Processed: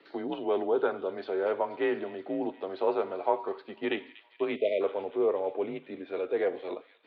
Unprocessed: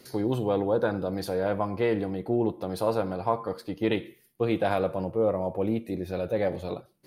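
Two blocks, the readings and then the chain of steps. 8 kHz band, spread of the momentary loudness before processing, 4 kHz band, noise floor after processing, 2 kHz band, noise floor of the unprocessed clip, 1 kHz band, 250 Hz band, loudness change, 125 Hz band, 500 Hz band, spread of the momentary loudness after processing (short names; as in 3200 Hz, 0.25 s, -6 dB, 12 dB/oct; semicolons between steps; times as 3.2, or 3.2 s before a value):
n/a, 6 LU, -3.5 dB, -60 dBFS, -1.5 dB, -62 dBFS, -2.5 dB, -6.5 dB, -3.0 dB, -21.5 dB, -1.5 dB, 8 LU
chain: mistuned SSB -79 Hz 430–3500 Hz; thin delay 0.24 s, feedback 76%, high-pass 2700 Hz, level -13 dB; spectral delete 4.56–4.81, 680–1900 Hz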